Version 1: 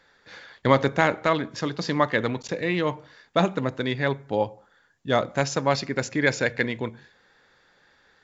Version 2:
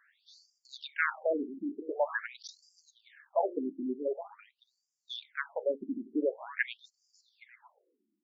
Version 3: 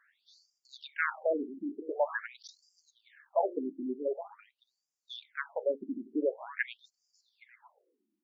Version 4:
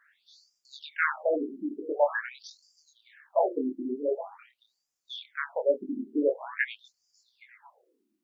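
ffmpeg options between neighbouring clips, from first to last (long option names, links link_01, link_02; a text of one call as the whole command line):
ffmpeg -i in.wav -filter_complex "[0:a]asplit=2[link_01][link_02];[link_02]adelay=816.3,volume=-14dB,highshelf=frequency=4000:gain=-18.4[link_03];[link_01][link_03]amix=inputs=2:normalize=0,afftfilt=real='re*between(b*sr/1024,260*pow(6700/260,0.5+0.5*sin(2*PI*0.46*pts/sr))/1.41,260*pow(6700/260,0.5+0.5*sin(2*PI*0.46*pts/sr))*1.41)':imag='im*between(b*sr/1024,260*pow(6700/260,0.5+0.5*sin(2*PI*0.46*pts/sr))/1.41,260*pow(6700/260,0.5+0.5*sin(2*PI*0.46*pts/sr))*1.41)':win_size=1024:overlap=0.75,volume=-4dB" out.wav
ffmpeg -i in.wav -af "equalizer=frequency=640:width=0.37:gain=5,volume=-4.5dB" out.wav
ffmpeg -i in.wav -af "flanger=delay=19.5:depth=8:speed=1.2,volume=7.5dB" out.wav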